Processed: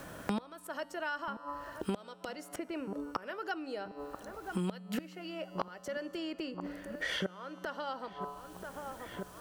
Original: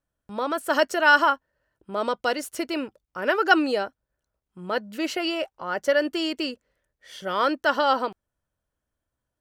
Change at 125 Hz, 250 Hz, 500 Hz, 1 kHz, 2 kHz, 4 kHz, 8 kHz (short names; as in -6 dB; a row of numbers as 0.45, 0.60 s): +4.0, -9.5, -14.5, -16.0, -17.0, -14.0, -10.5 dB